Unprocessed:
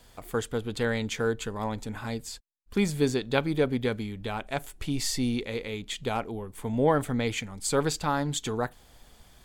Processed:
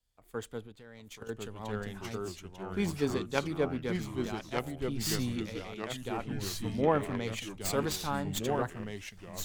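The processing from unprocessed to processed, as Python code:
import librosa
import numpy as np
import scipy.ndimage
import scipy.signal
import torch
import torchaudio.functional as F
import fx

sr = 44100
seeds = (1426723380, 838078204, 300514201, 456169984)

y = fx.tracing_dist(x, sr, depth_ms=0.072)
y = fx.echo_pitch(y, sr, ms=790, semitones=-2, count=3, db_per_echo=-3.0)
y = fx.level_steps(y, sr, step_db=12, at=(0.66, 1.29))
y = fx.band_widen(y, sr, depth_pct=70)
y = y * 10.0 ** (-7.5 / 20.0)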